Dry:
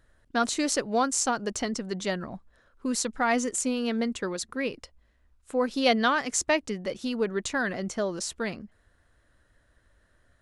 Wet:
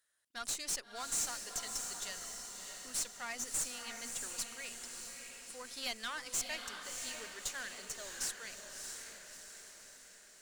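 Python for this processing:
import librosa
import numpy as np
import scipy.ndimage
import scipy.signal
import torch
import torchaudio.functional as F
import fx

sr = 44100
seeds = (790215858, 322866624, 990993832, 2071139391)

y = np.diff(x, prepend=0.0)
y = fx.tube_stage(y, sr, drive_db=33.0, bias=0.6)
y = fx.echo_diffused(y, sr, ms=643, feedback_pct=55, wet_db=-5.0)
y = y * librosa.db_to_amplitude(1.5)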